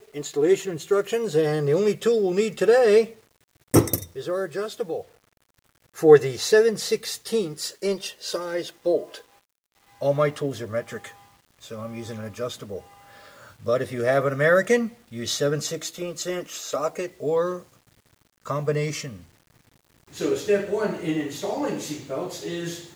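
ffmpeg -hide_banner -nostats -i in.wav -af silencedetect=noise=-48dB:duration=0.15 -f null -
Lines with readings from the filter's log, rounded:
silence_start: 3.20
silence_end: 3.74 | silence_duration: 0.54
silence_start: 5.08
silence_end: 5.95 | silence_duration: 0.87
silence_start: 9.22
silence_end: 9.92 | silence_duration: 0.70
silence_start: 11.27
silence_end: 11.61 | silence_duration: 0.35
silence_start: 17.74
silence_end: 18.45 | silence_duration: 0.72
silence_start: 19.25
silence_end: 20.07 | silence_duration: 0.82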